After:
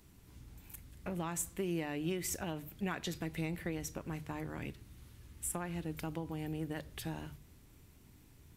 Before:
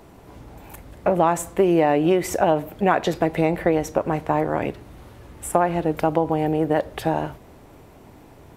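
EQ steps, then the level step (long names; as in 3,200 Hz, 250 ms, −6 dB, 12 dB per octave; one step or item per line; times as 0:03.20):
guitar amp tone stack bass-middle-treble 6-0-2
high-shelf EQ 4,100 Hz +5.5 dB
mains-hum notches 50/100/150 Hz
+4.0 dB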